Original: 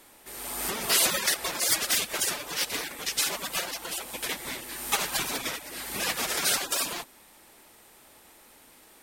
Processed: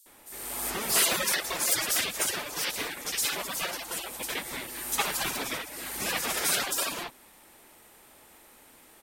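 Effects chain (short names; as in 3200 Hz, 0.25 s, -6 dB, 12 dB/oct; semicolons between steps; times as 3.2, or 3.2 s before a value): bands offset in time highs, lows 60 ms, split 4800 Hz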